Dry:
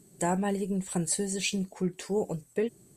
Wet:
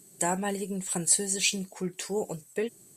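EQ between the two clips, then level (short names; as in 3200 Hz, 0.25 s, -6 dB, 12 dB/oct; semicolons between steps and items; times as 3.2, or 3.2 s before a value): tilt +2 dB/oct; +1.0 dB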